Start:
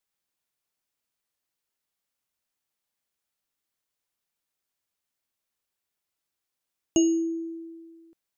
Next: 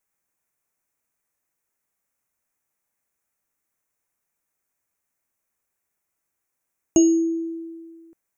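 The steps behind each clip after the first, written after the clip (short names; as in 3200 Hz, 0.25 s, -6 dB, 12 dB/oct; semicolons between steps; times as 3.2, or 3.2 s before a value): band shelf 3800 Hz -12.5 dB 1 oct; gain +5.5 dB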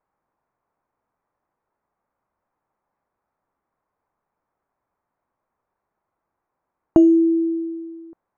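synth low-pass 1000 Hz, resonance Q 1.8; in parallel at +3 dB: compressor, threshold -25 dBFS, peak gain reduction 12 dB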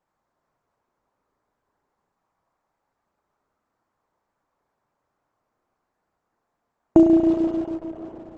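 spring tank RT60 3.6 s, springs 34 ms, chirp 65 ms, DRR 0 dB; Opus 10 kbps 48000 Hz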